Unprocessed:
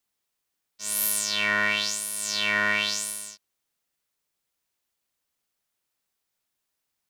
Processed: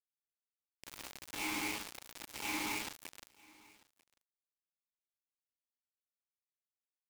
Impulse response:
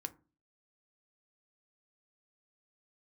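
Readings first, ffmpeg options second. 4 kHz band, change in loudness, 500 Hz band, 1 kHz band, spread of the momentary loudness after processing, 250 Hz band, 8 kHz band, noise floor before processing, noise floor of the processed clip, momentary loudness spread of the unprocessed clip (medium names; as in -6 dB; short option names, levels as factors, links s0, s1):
-17.0 dB, -15.5 dB, -14.5 dB, -11.5 dB, 18 LU, -6.0 dB, -17.5 dB, -81 dBFS, under -85 dBFS, 11 LU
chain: -filter_complex "[0:a]aecho=1:1:4.6:0.92,alimiter=limit=0.126:level=0:latency=1:release=100,aeval=exprs='(mod(39.8*val(0)+1,2)-1)/39.8':c=same,asplit=3[s0][s1][s2];[s0]bandpass=f=300:t=q:w=8,volume=1[s3];[s1]bandpass=f=870:t=q:w=8,volume=0.501[s4];[s2]bandpass=f=2240:t=q:w=8,volume=0.355[s5];[s3][s4][s5]amix=inputs=3:normalize=0,acrusher=bits=8:mix=0:aa=0.000001,asplit=2[s6][s7];[s7]aecho=0:1:943:0.0631[s8];[s6][s8]amix=inputs=2:normalize=0,volume=6.68"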